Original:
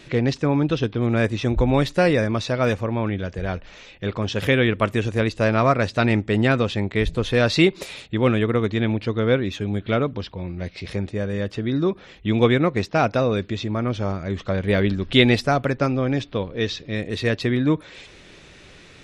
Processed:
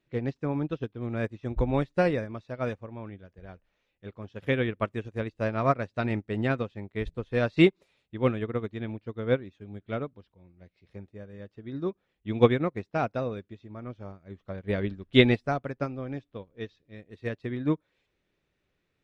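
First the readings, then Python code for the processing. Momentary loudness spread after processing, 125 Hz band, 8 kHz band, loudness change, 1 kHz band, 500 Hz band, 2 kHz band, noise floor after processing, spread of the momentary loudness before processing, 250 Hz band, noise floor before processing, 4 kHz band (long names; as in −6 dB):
21 LU, −9.5 dB, below −20 dB, −7.0 dB, −8.5 dB, −7.5 dB, −9.5 dB, −78 dBFS, 10 LU, −8.0 dB, −47 dBFS, −10.5 dB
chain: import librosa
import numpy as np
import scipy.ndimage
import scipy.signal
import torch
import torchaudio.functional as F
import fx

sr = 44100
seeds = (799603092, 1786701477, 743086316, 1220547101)

y = fx.high_shelf(x, sr, hz=3200.0, db=-9.5)
y = fx.upward_expand(y, sr, threshold_db=-32.0, expansion=2.5)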